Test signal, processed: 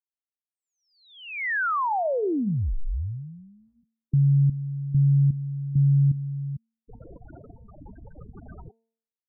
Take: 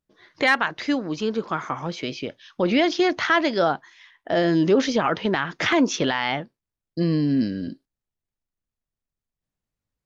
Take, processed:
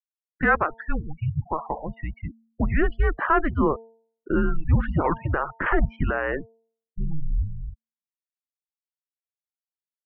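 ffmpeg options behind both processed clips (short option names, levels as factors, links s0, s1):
-af "afftfilt=real='re*gte(hypot(re,im),0.0562)':imag='im*gte(hypot(re,im),0.0562)':win_size=1024:overlap=0.75,highpass=f=230:t=q:w=0.5412,highpass=f=230:t=q:w=1.307,lowpass=f=2300:t=q:w=0.5176,lowpass=f=2300:t=q:w=0.7071,lowpass=f=2300:t=q:w=1.932,afreqshift=-310,bandreject=f=226.5:t=h:w=4,bandreject=f=453:t=h:w=4,bandreject=f=679.5:t=h:w=4,bandreject=f=906:t=h:w=4"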